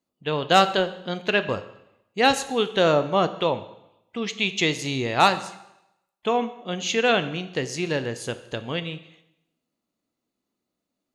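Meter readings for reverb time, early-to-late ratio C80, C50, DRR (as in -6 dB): 0.85 s, 15.5 dB, 14.0 dB, 10.5 dB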